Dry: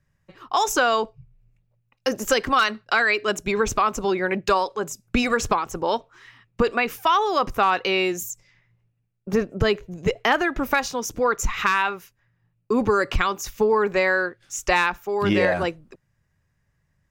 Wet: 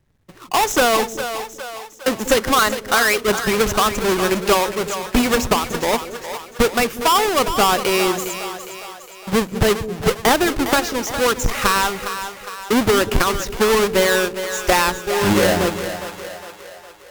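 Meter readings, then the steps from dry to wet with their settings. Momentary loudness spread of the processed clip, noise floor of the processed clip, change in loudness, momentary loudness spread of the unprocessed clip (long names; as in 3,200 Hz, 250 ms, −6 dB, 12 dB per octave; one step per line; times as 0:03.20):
14 LU, −41 dBFS, +4.0 dB, 8 LU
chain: each half-wave held at its own peak
echo with a time of its own for lows and highs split 460 Hz, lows 192 ms, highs 409 ms, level −9.5 dB
AAC 192 kbit/s 48,000 Hz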